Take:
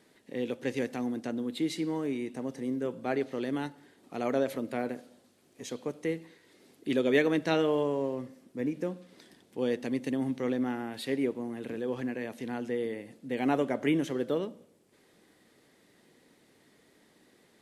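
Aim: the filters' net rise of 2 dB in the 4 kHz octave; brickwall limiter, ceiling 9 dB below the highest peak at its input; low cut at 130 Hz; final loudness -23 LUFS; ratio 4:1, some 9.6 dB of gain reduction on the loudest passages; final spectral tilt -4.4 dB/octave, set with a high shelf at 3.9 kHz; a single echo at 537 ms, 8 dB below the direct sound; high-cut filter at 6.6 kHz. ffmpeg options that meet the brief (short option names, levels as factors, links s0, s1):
-af "highpass=130,lowpass=6600,highshelf=f=3900:g=-6.5,equalizer=f=4000:t=o:g=6.5,acompressor=threshold=0.0282:ratio=4,alimiter=level_in=1.88:limit=0.0631:level=0:latency=1,volume=0.531,aecho=1:1:537:0.398,volume=6.68"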